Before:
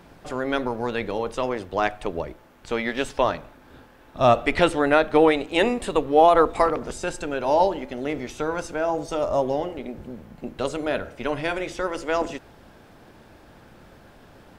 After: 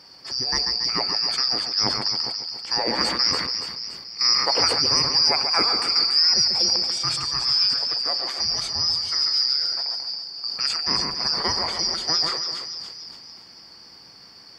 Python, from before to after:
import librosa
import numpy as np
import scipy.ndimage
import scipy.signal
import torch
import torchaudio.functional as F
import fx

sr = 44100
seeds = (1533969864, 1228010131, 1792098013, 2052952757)

p1 = fx.band_shuffle(x, sr, order='2341')
p2 = fx.high_shelf(p1, sr, hz=4500.0, db=-10.5)
p3 = fx.hum_notches(p2, sr, base_hz=50, count=2)
p4 = fx.over_compress(p3, sr, threshold_db=-27.0, ratio=-1.0)
p5 = p3 + (p4 * 10.0 ** (-1.5 / 20.0))
p6 = scipy.signal.sosfilt(scipy.signal.butter(2, 49.0, 'highpass', fs=sr, output='sos'), p5)
p7 = fx.low_shelf(p6, sr, hz=230.0, db=-8.5)
p8 = fx.notch(p7, sr, hz=600.0, q=12.0)
p9 = p8 + fx.echo_split(p8, sr, split_hz=2500.0, low_ms=139, high_ms=286, feedback_pct=52, wet_db=-6.5, dry=0)
y = fx.sustainer(p9, sr, db_per_s=43.0)